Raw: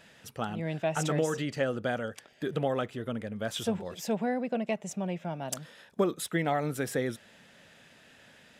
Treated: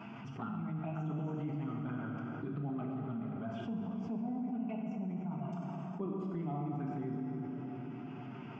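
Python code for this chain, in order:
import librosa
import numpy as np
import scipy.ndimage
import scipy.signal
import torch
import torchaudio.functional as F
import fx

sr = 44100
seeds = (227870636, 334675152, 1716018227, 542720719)

y = scipy.signal.sosfilt(scipy.signal.butter(4, 140.0, 'highpass', fs=sr, output='sos'), x)
y = fx.high_shelf(y, sr, hz=2300.0, db=-11.0)
y = fx.fixed_phaser(y, sr, hz=2600.0, stages=8)
y = fx.env_flanger(y, sr, rest_ms=9.9, full_db=-31.5)
y = fx.spacing_loss(y, sr, db_at_10k=39)
y = fx.rev_plate(y, sr, seeds[0], rt60_s=2.8, hf_ratio=0.75, predelay_ms=0, drr_db=-1.0)
y = fx.env_flatten(y, sr, amount_pct=70)
y = y * 10.0 ** (-6.0 / 20.0)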